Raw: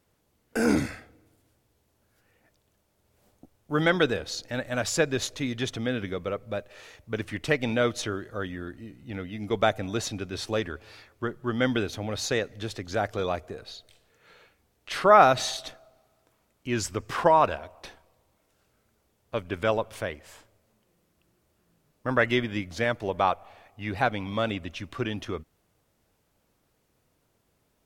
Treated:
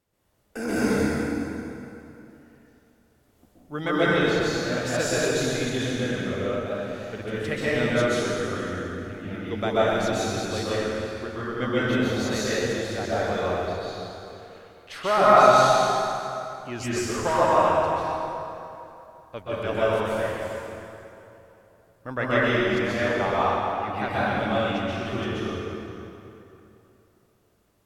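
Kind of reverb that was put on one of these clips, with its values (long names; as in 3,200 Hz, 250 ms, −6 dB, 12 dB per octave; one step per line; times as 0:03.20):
dense smooth reverb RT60 3 s, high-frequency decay 0.7×, pre-delay 115 ms, DRR −10 dB
level −7 dB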